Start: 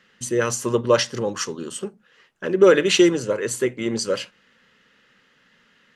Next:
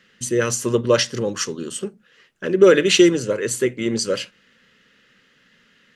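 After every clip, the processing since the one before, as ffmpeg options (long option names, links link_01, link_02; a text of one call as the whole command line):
ffmpeg -i in.wav -af "equalizer=frequency=890:width=1.4:gain=-7.5,volume=3dB" out.wav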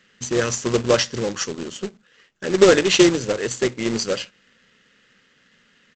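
ffmpeg -i in.wav -af "tremolo=f=200:d=0.333,aresample=16000,acrusher=bits=2:mode=log:mix=0:aa=0.000001,aresample=44100" out.wav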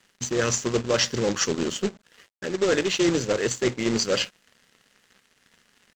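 ffmpeg -i in.wav -af "areverse,acompressor=threshold=-27dB:ratio=5,areverse,aeval=exprs='sgn(val(0))*max(abs(val(0))-0.0015,0)':channel_layout=same,volume=6.5dB" out.wav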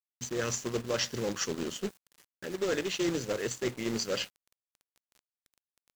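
ffmpeg -i in.wav -af "acrusher=bits=6:mix=0:aa=0.000001,volume=-8.5dB" out.wav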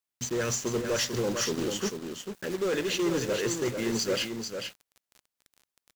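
ffmpeg -i in.wav -filter_complex "[0:a]asoftclip=type=tanh:threshold=-29.5dB,asplit=2[link_01][link_02];[link_02]aecho=0:1:444:0.473[link_03];[link_01][link_03]amix=inputs=2:normalize=0,volume=6.5dB" out.wav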